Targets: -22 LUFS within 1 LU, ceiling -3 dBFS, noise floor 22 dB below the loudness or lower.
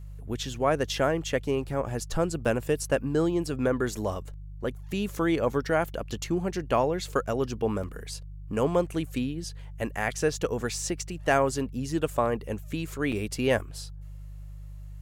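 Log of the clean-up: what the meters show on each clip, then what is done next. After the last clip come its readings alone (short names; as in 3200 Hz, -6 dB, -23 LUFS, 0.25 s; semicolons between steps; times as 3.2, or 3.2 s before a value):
dropouts 3; longest dropout 5.4 ms; hum 50 Hz; harmonics up to 150 Hz; hum level -38 dBFS; loudness -28.5 LUFS; peak -10.0 dBFS; loudness target -22.0 LUFS
-> interpolate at 2.45/7.83/13.12, 5.4 ms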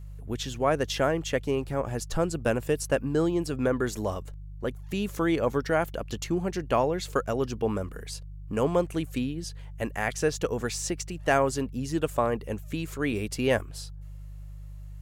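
dropouts 0; hum 50 Hz; harmonics up to 150 Hz; hum level -38 dBFS
-> de-hum 50 Hz, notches 3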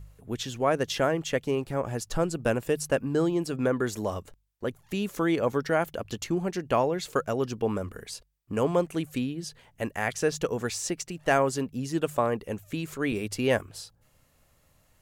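hum none; loudness -29.0 LUFS; peak -10.5 dBFS; loudness target -22.0 LUFS
-> gain +7 dB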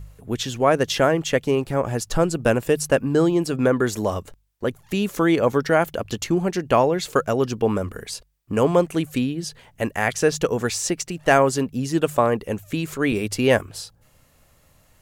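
loudness -22.0 LUFS; peak -3.5 dBFS; noise floor -58 dBFS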